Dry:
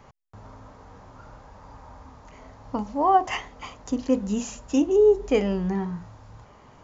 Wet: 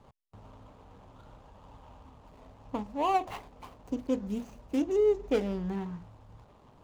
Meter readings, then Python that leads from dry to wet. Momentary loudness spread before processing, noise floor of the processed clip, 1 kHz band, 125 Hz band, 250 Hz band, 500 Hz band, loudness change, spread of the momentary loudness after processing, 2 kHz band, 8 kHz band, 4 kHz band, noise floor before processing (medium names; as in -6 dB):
15 LU, -59 dBFS, -8.5 dB, -7.5 dB, -7.5 dB, -7.5 dB, -7.5 dB, 16 LU, -9.0 dB, no reading, -8.0 dB, -52 dBFS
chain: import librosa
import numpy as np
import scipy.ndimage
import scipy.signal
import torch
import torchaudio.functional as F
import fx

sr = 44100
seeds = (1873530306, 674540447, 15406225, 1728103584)

y = scipy.signal.medfilt(x, 25)
y = fx.hpss(y, sr, part='percussive', gain_db=4)
y = y * librosa.db_to_amplitude(-7.5)